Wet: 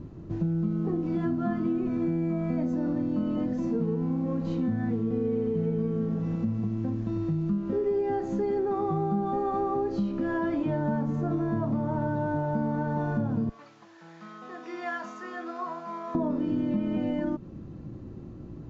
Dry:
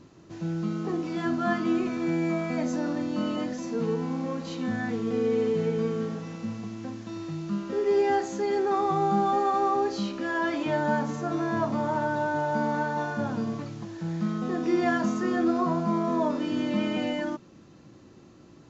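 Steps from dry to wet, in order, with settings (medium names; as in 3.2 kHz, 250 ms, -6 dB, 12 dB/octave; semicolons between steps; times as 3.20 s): 13.49–16.15 s: high-pass 1.2 kHz 12 dB/octave; tilt EQ -4.5 dB/octave; compression, threshold -25 dBFS, peak gain reduction 12 dB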